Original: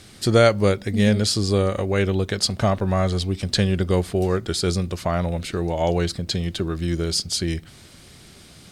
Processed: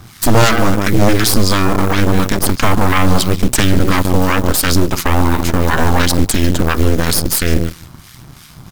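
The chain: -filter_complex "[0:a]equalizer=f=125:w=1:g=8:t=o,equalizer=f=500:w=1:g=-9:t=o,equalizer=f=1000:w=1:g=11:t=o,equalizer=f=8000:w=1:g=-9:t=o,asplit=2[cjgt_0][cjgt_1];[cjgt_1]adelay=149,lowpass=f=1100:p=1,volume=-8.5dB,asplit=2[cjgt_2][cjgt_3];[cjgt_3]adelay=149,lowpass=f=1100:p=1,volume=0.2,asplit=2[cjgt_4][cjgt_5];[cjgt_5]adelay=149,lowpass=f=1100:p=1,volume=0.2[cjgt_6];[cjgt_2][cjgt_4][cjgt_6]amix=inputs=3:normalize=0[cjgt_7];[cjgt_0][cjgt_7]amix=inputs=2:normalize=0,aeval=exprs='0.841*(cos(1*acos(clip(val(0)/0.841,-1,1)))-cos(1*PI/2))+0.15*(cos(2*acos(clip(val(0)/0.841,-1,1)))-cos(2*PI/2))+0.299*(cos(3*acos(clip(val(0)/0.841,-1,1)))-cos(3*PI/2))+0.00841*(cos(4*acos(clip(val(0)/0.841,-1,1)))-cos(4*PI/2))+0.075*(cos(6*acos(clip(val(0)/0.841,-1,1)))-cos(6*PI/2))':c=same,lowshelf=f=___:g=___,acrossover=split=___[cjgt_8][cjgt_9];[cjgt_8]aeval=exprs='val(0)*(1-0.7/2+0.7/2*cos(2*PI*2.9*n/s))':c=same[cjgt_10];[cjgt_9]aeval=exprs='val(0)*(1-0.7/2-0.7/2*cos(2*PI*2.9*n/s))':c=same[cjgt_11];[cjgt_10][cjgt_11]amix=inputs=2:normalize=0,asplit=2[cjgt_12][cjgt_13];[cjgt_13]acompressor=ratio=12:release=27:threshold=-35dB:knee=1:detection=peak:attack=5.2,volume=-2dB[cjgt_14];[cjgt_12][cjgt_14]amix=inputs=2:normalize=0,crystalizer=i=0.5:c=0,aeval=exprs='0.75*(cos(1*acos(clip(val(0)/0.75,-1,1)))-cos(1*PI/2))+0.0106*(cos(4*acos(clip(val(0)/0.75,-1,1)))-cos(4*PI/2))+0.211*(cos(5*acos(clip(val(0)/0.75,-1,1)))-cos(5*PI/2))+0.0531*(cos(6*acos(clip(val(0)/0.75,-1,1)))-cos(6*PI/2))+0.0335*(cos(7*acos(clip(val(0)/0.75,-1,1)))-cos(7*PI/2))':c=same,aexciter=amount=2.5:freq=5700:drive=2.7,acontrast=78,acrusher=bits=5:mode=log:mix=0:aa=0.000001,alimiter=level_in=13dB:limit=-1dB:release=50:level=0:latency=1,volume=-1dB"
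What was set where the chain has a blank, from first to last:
130, 2, 1200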